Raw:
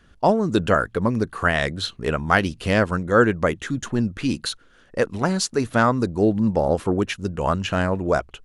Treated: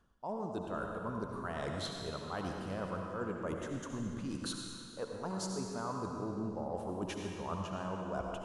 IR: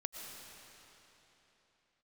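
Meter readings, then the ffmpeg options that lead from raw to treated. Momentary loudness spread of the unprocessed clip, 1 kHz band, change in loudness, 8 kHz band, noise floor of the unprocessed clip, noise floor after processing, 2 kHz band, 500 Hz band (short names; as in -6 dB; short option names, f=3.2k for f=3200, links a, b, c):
7 LU, -17.0 dB, -18.0 dB, -13.5 dB, -54 dBFS, -48 dBFS, -23.0 dB, -18.0 dB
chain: -filter_complex "[0:a]equalizer=f=1k:t=o:w=1:g=9,equalizer=f=2k:t=o:w=1:g=-10,equalizer=f=4k:t=o:w=1:g=-3,areverse,acompressor=threshold=-30dB:ratio=10,areverse[a];[1:a]atrim=start_sample=2205,asetrate=70560,aresample=44100[b];[a][b]afir=irnorm=-1:irlink=0"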